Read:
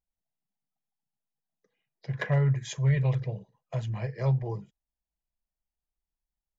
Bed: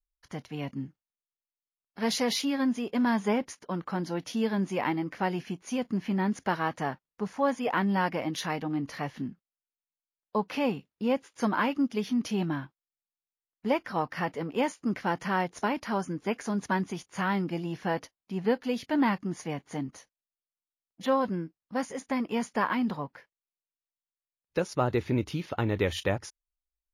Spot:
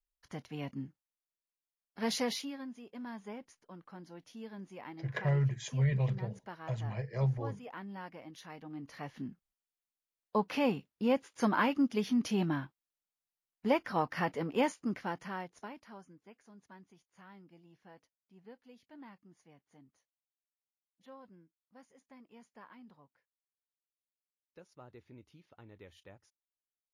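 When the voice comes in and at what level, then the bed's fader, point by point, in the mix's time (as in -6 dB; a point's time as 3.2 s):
2.95 s, -5.0 dB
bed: 2.24 s -5 dB
2.67 s -18 dB
8.44 s -18 dB
9.55 s -2 dB
14.65 s -2 dB
16.34 s -27 dB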